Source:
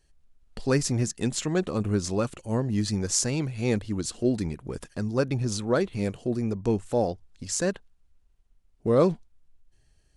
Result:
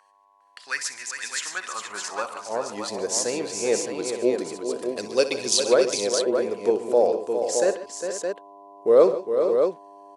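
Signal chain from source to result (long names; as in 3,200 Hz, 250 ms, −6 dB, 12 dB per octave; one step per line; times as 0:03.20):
hum with harmonics 100 Hz, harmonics 11, −51 dBFS 0 dB per octave
0:04.97–0:05.63: high shelf with overshoot 2,000 Hz +11.5 dB, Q 1.5
high-pass filter sweep 1,700 Hz → 460 Hz, 0:01.31–0:02.97
multi-tap delay 63/137/151/406/473/617 ms −13.5/−16.5/−18.5/−8/−13/−6 dB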